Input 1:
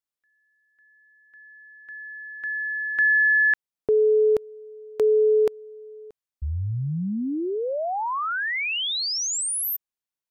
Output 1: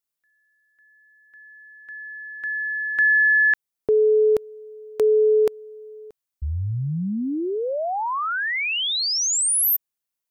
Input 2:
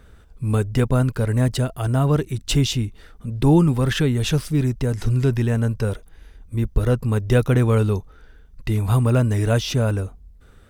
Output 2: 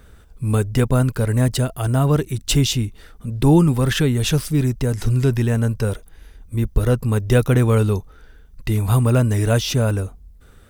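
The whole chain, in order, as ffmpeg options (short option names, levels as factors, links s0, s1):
-af "highshelf=f=7700:g=7.5,volume=1.19"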